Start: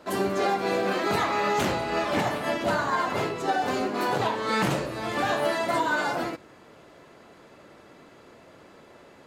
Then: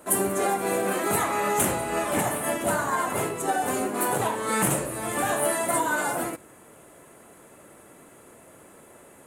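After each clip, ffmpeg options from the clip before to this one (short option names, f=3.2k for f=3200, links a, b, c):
-af "highshelf=f=6.8k:t=q:w=3:g=13.5"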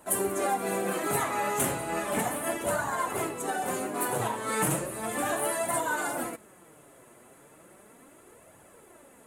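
-af "flanger=delay=1:depth=7.6:regen=40:speed=0.35:shape=triangular"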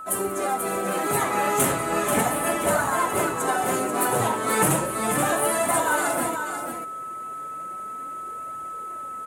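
-filter_complex "[0:a]dynaudnorm=f=770:g=3:m=4.5dB,aeval=exprs='val(0)+0.0158*sin(2*PI*1300*n/s)':c=same,asplit=2[a][b];[b]aecho=0:1:487:0.447[c];[a][c]amix=inputs=2:normalize=0,volume=1.5dB"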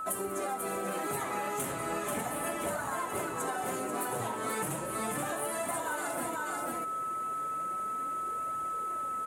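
-af "acompressor=threshold=-31dB:ratio=10"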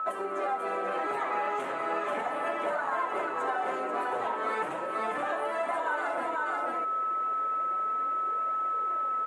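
-af "highpass=450,lowpass=2.3k,volume=5.5dB"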